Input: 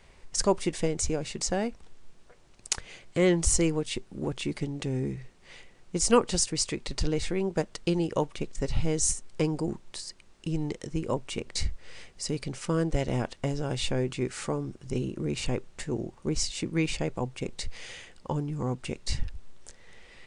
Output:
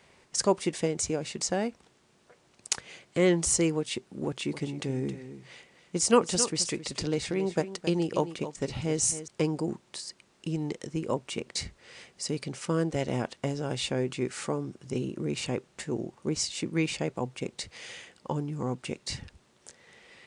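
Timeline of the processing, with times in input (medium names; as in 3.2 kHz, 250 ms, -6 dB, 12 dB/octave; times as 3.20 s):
4.26–9.28 s: delay 268 ms -12 dB
whole clip: high-pass 130 Hz 12 dB/octave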